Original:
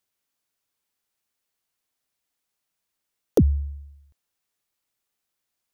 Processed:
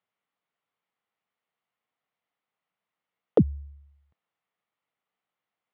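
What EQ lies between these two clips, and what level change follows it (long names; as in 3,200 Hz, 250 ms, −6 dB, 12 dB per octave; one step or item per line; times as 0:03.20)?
loudspeaker in its box 190–2,600 Hz, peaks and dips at 260 Hz −8 dB, 370 Hz −9 dB, 570 Hz −4 dB, 920 Hz −3 dB, 1,600 Hz −8 dB, 2,500 Hz −6 dB
+5.0 dB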